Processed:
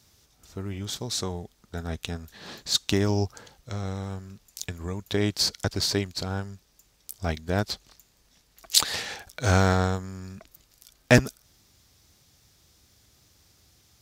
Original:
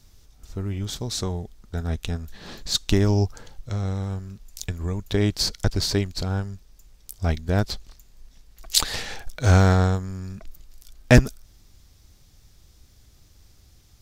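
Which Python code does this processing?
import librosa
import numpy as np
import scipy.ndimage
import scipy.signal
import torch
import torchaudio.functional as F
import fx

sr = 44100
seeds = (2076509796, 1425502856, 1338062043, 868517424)

y = scipy.signal.sosfilt(scipy.signal.butter(2, 85.0, 'highpass', fs=sr, output='sos'), x)
y = fx.low_shelf(y, sr, hz=360.0, db=-5.0)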